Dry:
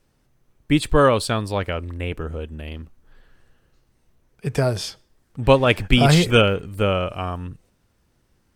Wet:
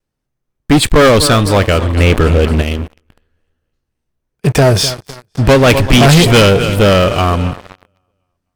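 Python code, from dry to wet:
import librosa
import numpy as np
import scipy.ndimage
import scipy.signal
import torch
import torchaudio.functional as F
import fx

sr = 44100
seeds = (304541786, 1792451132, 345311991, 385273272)

y = fx.echo_feedback(x, sr, ms=255, feedback_pct=54, wet_db=-18)
y = fx.leveller(y, sr, passes=5)
y = fx.vibrato(y, sr, rate_hz=0.92, depth_cents=22.0)
y = fx.env_flatten(y, sr, amount_pct=50, at=(1.96, 2.61), fade=0.02)
y = y * 10.0 ** (-2.0 / 20.0)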